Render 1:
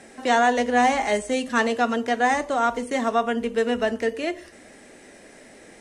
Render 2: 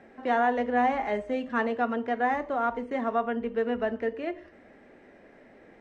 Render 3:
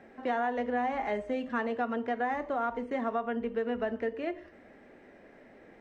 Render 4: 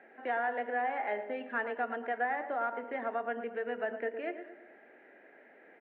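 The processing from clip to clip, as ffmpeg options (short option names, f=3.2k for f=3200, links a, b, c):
-af "lowpass=1.9k,bandreject=f=308.3:t=h:w=4,bandreject=f=616.6:t=h:w=4,bandreject=f=924.9:t=h:w=4,bandreject=f=1.2332k:t=h:w=4,bandreject=f=1.5415k:t=h:w=4,bandreject=f=1.8498k:t=h:w=4,bandreject=f=2.1581k:t=h:w=4,bandreject=f=2.4664k:t=h:w=4,bandreject=f=2.7747k:t=h:w=4,bandreject=f=3.083k:t=h:w=4,bandreject=f=3.3913k:t=h:w=4,bandreject=f=3.6996k:t=h:w=4,bandreject=f=4.0079k:t=h:w=4,bandreject=f=4.3162k:t=h:w=4,bandreject=f=4.6245k:t=h:w=4,bandreject=f=4.9328k:t=h:w=4,bandreject=f=5.2411k:t=h:w=4,bandreject=f=5.5494k:t=h:w=4,bandreject=f=5.8577k:t=h:w=4,bandreject=f=6.166k:t=h:w=4,bandreject=f=6.4743k:t=h:w=4,bandreject=f=6.7826k:t=h:w=4,bandreject=f=7.0909k:t=h:w=4,bandreject=f=7.3992k:t=h:w=4,bandreject=f=7.7075k:t=h:w=4,bandreject=f=8.0158k:t=h:w=4,bandreject=f=8.3241k:t=h:w=4,bandreject=f=8.6324k:t=h:w=4,bandreject=f=8.9407k:t=h:w=4,bandreject=f=9.249k:t=h:w=4,bandreject=f=9.5573k:t=h:w=4,bandreject=f=9.8656k:t=h:w=4,bandreject=f=10.1739k:t=h:w=4,bandreject=f=10.4822k:t=h:w=4,bandreject=f=10.7905k:t=h:w=4,bandreject=f=11.0988k:t=h:w=4,bandreject=f=11.4071k:t=h:w=4,volume=-5dB"
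-af "acompressor=threshold=-26dB:ratio=6,volume=-1dB"
-filter_complex "[0:a]highpass=450,equalizer=f=540:t=q:w=4:g=-3,equalizer=f=1.1k:t=q:w=4:g=-9,equalizer=f=1.6k:t=q:w=4:g=4,lowpass=f=2.7k:w=0.5412,lowpass=f=2.7k:w=1.3066,asplit=2[a][b];[b]adelay=112,lowpass=f=1.5k:p=1,volume=-9.5dB,asplit=2[c][d];[d]adelay=112,lowpass=f=1.5k:p=1,volume=0.53,asplit=2[e][f];[f]adelay=112,lowpass=f=1.5k:p=1,volume=0.53,asplit=2[g][h];[h]adelay=112,lowpass=f=1.5k:p=1,volume=0.53,asplit=2[i][j];[j]adelay=112,lowpass=f=1.5k:p=1,volume=0.53,asplit=2[k][l];[l]adelay=112,lowpass=f=1.5k:p=1,volume=0.53[m];[c][e][g][i][k][m]amix=inputs=6:normalize=0[n];[a][n]amix=inputs=2:normalize=0"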